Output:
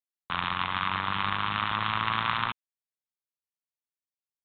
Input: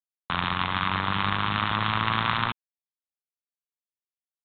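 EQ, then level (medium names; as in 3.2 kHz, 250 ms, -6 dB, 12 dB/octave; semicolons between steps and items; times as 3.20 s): dynamic bell 2.7 kHz, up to +5 dB, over -40 dBFS, Q 1.1; dynamic bell 1.1 kHz, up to +5 dB, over -36 dBFS, Q 1.2; -7.5 dB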